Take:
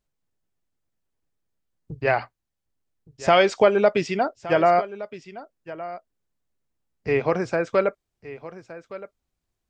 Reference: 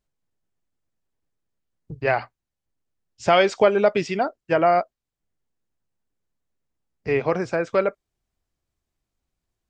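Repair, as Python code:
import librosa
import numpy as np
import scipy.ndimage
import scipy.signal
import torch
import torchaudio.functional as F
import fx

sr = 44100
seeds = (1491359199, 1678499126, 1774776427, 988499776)

y = fx.fix_echo_inverse(x, sr, delay_ms=1167, level_db=-16.0)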